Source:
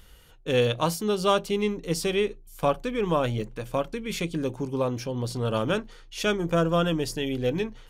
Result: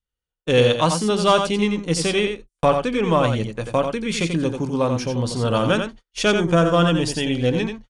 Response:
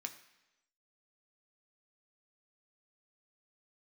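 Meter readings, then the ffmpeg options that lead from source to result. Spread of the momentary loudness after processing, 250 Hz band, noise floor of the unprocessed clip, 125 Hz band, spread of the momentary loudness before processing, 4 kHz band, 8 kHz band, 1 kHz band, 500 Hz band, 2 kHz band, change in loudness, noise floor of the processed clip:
6 LU, +7.5 dB, −51 dBFS, +7.0 dB, 7 LU, +7.5 dB, +7.5 dB, +7.5 dB, +6.0 dB, +7.5 dB, +6.5 dB, below −85 dBFS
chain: -af "acontrast=83,adynamicequalizer=threshold=0.02:dfrequency=410:dqfactor=3:tfrequency=410:tqfactor=3:attack=5:release=100:ratio=0.375:range=3.5:mode=cutabove:tftype=bell,agate=range=-43dB:threshold=-31dB:ratio=16:detection=peak,aecho=1:1:88:0.473,aresample=22050,aresample=44100"

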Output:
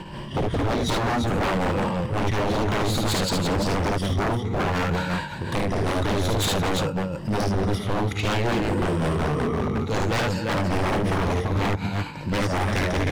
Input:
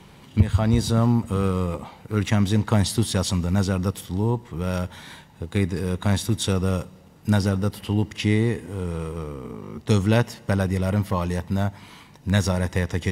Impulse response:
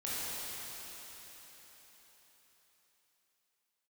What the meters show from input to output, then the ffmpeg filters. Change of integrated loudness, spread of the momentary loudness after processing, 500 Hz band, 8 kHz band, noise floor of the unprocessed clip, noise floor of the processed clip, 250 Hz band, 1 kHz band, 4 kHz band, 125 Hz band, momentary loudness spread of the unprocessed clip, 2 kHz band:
−0.5 dB, 4 LU, +2.5 dB, −0.5 dB, −49 dBFS, −34 dBFS, −2.0 dB, +7.0 dB, +3.0 dB, −3.0 dB, 12 LU, +4.5 dB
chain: -filter_complex "[0:a]afftfilt=real='re*pow(10,11/40*sin(2*PI*(1.3*log(max(b,1)*sr/1024/100)/log(2)-(0.57)*(pts-256)/sr)))':imag='im*pow(10,11/40*sin(2*PI*(1.3*log(max(b,1)*sr/1024/100)/log(2)-(0.57)*(pts-256)/sr)))':win_size=1024:overlap=0.75,aemphasis=mode=reproduction:type=50fm,asplit=2[link_01][link_02];[link_02]acompressor=threshold=-27dB:ratio=20,volume=3dB[link_03];[link_01][link_03]amix=inputs=2:normalize=0,alimiter=limit=-8.5dB:level=0:latency=1:release=325,tremolo=f=5.4:d=0.79,asplit=2[link_04][link_05];[link_05]aecho=0:1:54|74|236|342:0.596|0.531|0.133|0.501[link_06];[link_04][link_06]amix=inputs=2:normalize=0,aeval=exprs='0.0708*(abs(mod(val(0)/0.0708+3,4)-2)-1)':channel_layout=same,volume=5dB"

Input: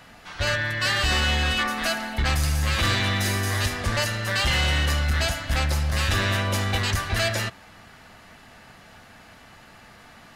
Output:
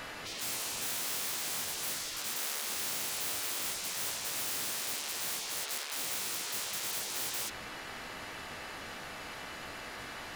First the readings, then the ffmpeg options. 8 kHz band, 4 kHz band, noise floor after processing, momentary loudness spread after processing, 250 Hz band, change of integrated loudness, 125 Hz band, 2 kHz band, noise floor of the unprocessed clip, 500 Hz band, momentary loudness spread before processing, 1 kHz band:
−1.0 dB, −10.5 dB, −44 dBFS, 10 LU, −18.0 dB, −11.5 dB, −31.0 dB, −15.5 dB, −49 dBFS, −15.5 dB, 4 LU, −13.5 dB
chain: -af "aeval=exprs='0.141*(cos(1*acos(clip(val(0)/0.141,-1,1)))-cos(1*PI/2))+0.0251*(cos(2*acos(clip(val(0)/0.141,-1,1)))-cos(2*PI/2))+0.00178*(cos(3*acos(clip(val(0)/0.141,-1,1)))-cos(3*PI/2))+0.0447*(cos(5*acos(clip(val(0)/0.141,-1,1)))-cos(5*PI/2))+0.00631*(cos(7*acos(clip(val(0)/0.141,-1,1)))-cos(7*PI/2))':channel_layout=same,aeval=exprs='0.0376*(abs(mod(val(0)/0.0376+3,4)-2)-1)':channel_layout=same,areverse,acompressor=mode=upward:threshold=-45dB:ratio=2.5,areverse,afftfilt=real='re*lt(hypot(re,im),0.0282)':imag='im*lt(hypot(re,im),0.0282)':win_size=1024:overlap=0.75"

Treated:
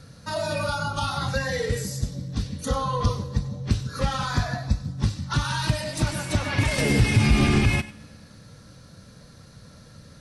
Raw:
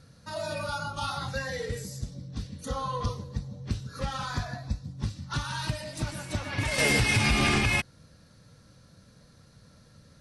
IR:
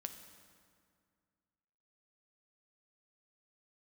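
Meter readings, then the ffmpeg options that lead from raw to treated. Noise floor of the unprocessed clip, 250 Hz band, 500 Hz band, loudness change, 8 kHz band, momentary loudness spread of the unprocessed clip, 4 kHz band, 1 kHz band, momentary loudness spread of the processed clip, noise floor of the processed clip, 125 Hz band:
−57 dBFS, +7.5 dB, +5.5 dB, +4.5 dB, +2.0 dB, 15 LU, +2.0 dB, +4.5 dB, 11 LU, −49 dBFS, +8.0 dB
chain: -filter_complex "[0:a]acrossover=split=400[link_01][link_02];[link_02]acompressor=threshold=-33dB:ratio=10[link_03];[link_01][link_03]amix=inputs=2:normalize=0,asplit=2[link_04][link_05];[1:a]atrim=start_sample=2205,lowshelf=frequency=380:gain=-12,adelay=96[link_06];[link_05][link_06]afir=irnorm=-1:irlink=0,volume=-11.5dB[link_07];[link_04][link_07]amix=inputs=2:normalize=0,volume=8dB"

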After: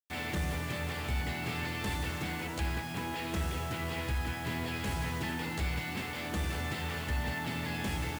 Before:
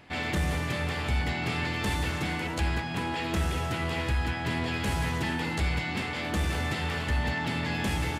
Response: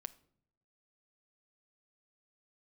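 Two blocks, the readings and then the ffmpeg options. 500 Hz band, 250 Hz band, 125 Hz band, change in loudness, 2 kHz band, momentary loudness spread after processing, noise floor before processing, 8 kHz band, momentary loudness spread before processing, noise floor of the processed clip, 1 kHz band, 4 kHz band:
−5.5 dB, −5.5 dB, −5.5 dB, −5.5 dB, −5.5 dB, 2 LU, −33 dBFS, −3.0 dB, 2 LU, −39 dBFS, −5.5 dB, −5.0 dB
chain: -af "acrusher=bits=6:mix=0:aa=0.000001,volume=-5.5dB"

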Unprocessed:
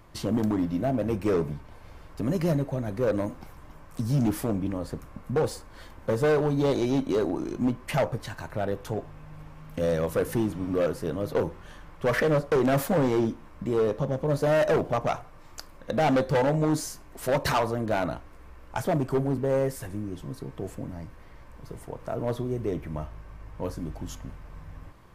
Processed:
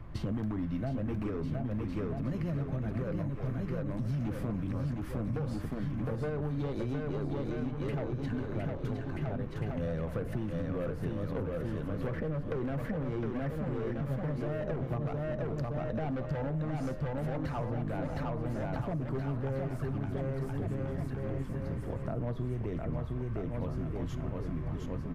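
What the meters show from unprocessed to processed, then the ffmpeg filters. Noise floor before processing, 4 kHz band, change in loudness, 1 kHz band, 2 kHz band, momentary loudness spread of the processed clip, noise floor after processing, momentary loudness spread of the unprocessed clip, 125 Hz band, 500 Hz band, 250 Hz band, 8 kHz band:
−48 dBFS, −14.0 dB, −7.5 dB, −11.0 dB, −10.5 dB, 2 LU, −38 dBFS, 19 LU, −1.5 dB, −10.5 dB, −6.0 dB, below −15 dB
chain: -filter_complex "[0:a]bass=frequency=250:gain=11,treble=frequency=4000:gain=-15,bandreject=frequency=930:width=24,aecho=1:1:710|1278|1732|2096|2387:0.631|0.398|0.251|0.158|0.1,alimiter=limit=-14dB:level=0:latency=1:release=177,acrossover=split=89|970[link_01][link_02][link_03];[link_01]acompressor=threshold=-42dB:ratio=4[link_04];[link_02]acompressor=threshold=-35dB:ratio=4[link_05];[link_03]acompressor=threshold=-49dB:ratio=4[link_06];[link_04][link_05][link_06]amix=inputs=3:normalize=0"

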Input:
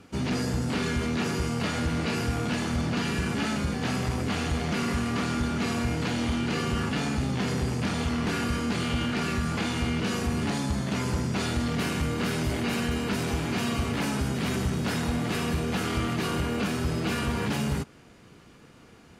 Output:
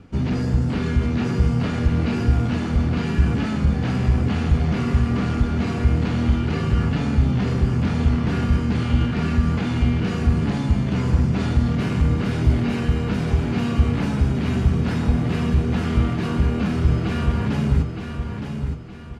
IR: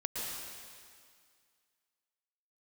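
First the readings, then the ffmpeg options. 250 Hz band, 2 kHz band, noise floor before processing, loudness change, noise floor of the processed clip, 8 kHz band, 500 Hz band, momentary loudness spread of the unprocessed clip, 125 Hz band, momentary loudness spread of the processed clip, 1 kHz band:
+6.0 dB, −0.5 dB, −52 dBFS, +7.0 dB, −29 dBFS, can't be measured, +3.0 dB, 1 LU, +10.5 dB, 2 LU, +1.0 dB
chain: -af "aemphasis=mode=reproduction:type=bsi,aecho=1:1:916|1832|2748|3664:0.447|0.165|0.0612|0.0226"

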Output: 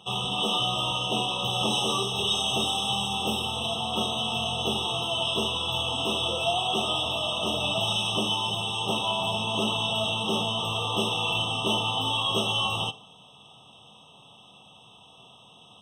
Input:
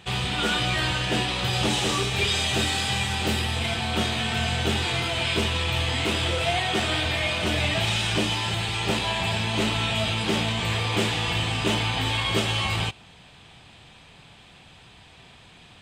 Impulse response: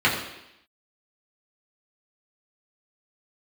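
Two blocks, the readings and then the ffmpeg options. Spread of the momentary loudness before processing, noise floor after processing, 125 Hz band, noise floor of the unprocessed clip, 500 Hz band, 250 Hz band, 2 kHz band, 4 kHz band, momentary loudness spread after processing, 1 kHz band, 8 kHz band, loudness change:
2 LU, −53 dBFS, −8.5 dB, −50 dBFS, −1.5 dB, −4.0 dB, −7.0 dB, +0.5 dB, 3 LU, +0.5 dB, −3.0 dB, −1.5 dB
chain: -filter_complex "[0:a]highpass=180,equalizer=frequency=330:width_type=o:width=0.37:gain=-9,asplit=2[link_01][link_02];[1:a]atrim=start_sample=2205,asetrate=79380,aresample=44100[link_03];[link_02][link_03]afir=irnorm=-1:irlink=0,volume=-23.5dB[link_04];[link_01][link_04]amix=inputs=2:normalize=0,afftfilt=real='re*eq(mod(floor(b*sr/1024/1300),2),0)':imag='im*eq(mod(floor(b*sr/1024/1300),2),0)':win_size=1024:overlap=0.75"

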